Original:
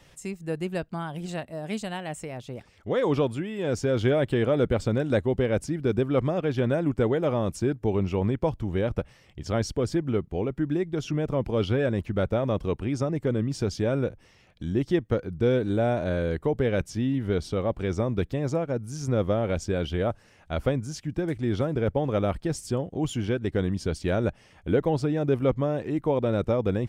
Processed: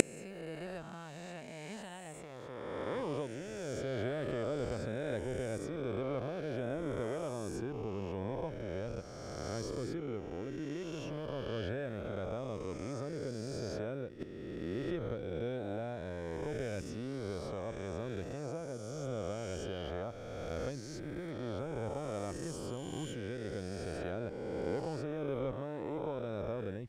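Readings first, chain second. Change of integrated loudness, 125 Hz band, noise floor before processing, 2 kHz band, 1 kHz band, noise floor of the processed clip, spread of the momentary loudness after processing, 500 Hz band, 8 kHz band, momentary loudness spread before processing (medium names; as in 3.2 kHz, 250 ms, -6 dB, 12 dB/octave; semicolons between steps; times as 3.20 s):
-13.0 dB, -14.0 dB, -57 dBFS, -10.0 dB, -10.5 dB, -47 dBFS, 7 LU, -12.0 dB, -6.0 dB, 9 LU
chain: reverse spectral sustain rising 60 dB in 2.57 s; inverted gate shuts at -25 dBFS, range -35 dB; trim +18 dB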